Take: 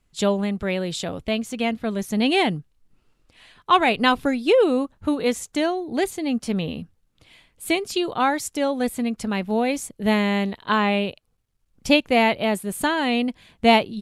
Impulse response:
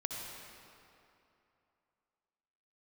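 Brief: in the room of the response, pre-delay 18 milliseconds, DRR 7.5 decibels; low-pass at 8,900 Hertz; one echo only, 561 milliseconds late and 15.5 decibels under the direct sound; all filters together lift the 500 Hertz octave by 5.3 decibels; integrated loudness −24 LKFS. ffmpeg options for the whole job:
-filter_complex "[0:a]lowpass=8900,equalizer=frequency=500:width_type=o:gain=6.5,aecho=1:1:561:0.168,asplit=2[link_01][link_02];[1:a]atrim=start_sample=2205,adelay=18[link_03];[link_02][link_03]afir=irnorm=-1:irlink=0,volume=-9dB[link_04];[link_01][link_04]amix=inputs=2:normalize=0,volume=-5dB"

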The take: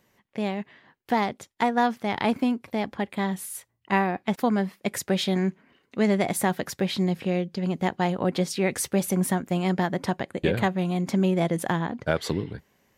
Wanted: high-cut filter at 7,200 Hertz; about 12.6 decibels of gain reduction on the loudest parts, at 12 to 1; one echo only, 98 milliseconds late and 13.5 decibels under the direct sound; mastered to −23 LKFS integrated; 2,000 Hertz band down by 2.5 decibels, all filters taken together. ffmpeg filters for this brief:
ffmpeg -i in.wav -af "lowpass=7200,equalizer=frequency=2000:width_type=o:gain=-3,acompressor=threshold=-31dB:ratio=12,aecho=1:1:98:0.211,volume=13.5dB" out.wav

